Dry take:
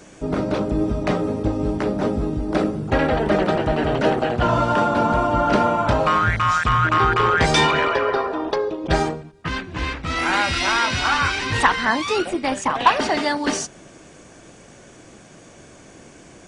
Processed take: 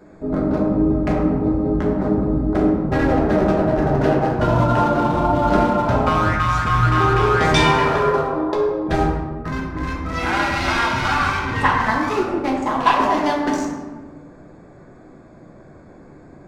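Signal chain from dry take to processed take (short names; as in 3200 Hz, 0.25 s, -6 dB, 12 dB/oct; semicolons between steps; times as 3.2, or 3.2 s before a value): Wiener smoothing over 15 samples; 11.39–11.8 high shelf 5600 Hz -8.5 dB; reverb RT60 1.3 s, pre-delay 5 ms, DRR -2.5 dB; gain -3 dB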